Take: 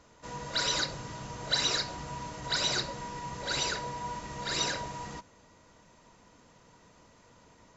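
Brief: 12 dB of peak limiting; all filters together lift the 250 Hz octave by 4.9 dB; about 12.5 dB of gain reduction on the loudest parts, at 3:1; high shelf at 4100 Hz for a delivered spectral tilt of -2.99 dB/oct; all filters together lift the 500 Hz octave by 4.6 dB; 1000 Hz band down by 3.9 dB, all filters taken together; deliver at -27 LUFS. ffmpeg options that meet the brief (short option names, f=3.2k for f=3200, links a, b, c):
-af "equalizer=f=250:t=o:g=5.5,equalizer=f=500:t=o:g=5.5,equalizer=f=1k:t=o:g=-6.5,highshelf=f=4.1k:g=9,acompressor=threshold=-37dB:ratio=3,volume=16dB,alimiter=limit=-19dB:level=0:latency=1"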